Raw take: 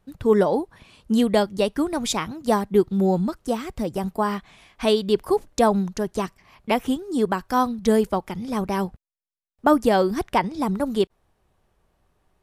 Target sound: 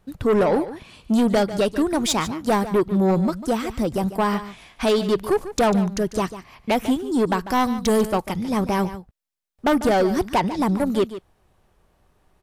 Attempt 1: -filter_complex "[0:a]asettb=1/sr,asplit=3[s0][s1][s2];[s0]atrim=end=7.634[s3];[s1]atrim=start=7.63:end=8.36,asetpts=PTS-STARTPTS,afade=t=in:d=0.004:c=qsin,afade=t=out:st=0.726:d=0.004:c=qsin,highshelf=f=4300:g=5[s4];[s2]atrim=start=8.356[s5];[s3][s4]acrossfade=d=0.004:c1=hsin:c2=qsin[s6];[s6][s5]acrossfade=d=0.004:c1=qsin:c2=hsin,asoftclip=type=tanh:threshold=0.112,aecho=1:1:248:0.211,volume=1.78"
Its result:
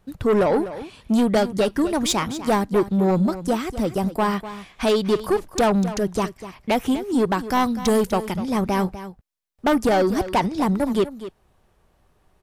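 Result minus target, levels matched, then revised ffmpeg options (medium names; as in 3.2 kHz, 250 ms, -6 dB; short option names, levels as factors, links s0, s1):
echo 102 ms late
-filter_complex "[0:a]asettb=1/sr,asplit=3[s0][s1][s2];[s0]atrim=end=7.634[s3];[s1]atrim=start=7.63:end=8.36,asetpts=PTS-STARTPTS,afade=t=in:d=0.004:c=qsin,afade=t=out:st=0.726:d=0.004:c=qsin,highshelf=f=4300:g=5[s4];[s2]atrim=start=8.356[s5];[s3][s4]acrossfade=d=0.004:c1=hsin:c2=qsin[s6];[s6][s5]acrossfade=d=0.004:c1=qsin:c2=hsin,asoftclip=type=tanh:threshold=0.112,aecho=1:1:146:0.211,volume=1.78"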